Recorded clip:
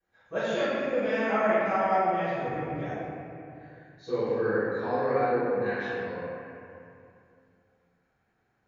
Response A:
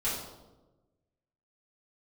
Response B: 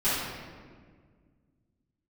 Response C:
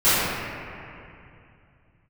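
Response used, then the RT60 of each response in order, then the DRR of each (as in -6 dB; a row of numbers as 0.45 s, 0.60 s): C; 1.1 s, 1.7 s, 2.6 s; -10.5 dB, -16.0 dB, -18.5 dB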